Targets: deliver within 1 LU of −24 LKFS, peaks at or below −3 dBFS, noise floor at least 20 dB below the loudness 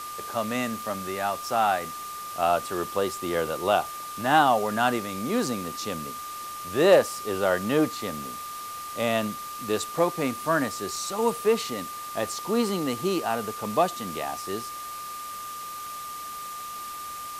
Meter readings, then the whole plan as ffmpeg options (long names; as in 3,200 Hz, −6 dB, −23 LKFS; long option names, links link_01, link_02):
interfering tone 1,200 Hz; level of the tone −35 dBFS; background noise floor −37 dBFS; target noise floor −48 dBFS; integrated loudness −27.5 LKFS; sample peak −7.5 dBFS; target loudness −24.0 LKFS
→ -af "bandreject=frequency=1200:width=30"
-af "afftdn=noise_reduction=11:noise_floor=-37"
-af "volume=3.5dB"